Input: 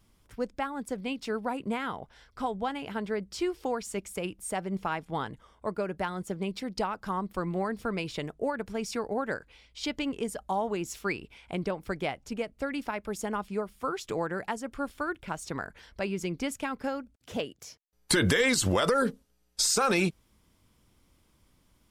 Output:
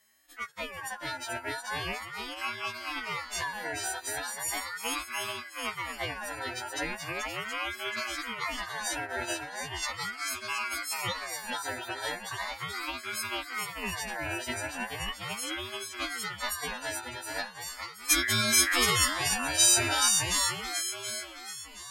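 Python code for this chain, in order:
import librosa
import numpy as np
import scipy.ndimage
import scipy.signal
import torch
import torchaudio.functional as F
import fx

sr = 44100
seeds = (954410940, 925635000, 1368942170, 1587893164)

y = fx.freq_snap(x, sr, grid_st=3)
y = fx.echo_swing(y, sr, ms=723, ratio=1.5, feedback_pct=37, wet_db=-4)
y = fx.ring_lfo(y, sr, carrier_hz=1500.0, swing_pct=25, hz=0.38)
y = y * librosa.db_to_amplitude(-3.0)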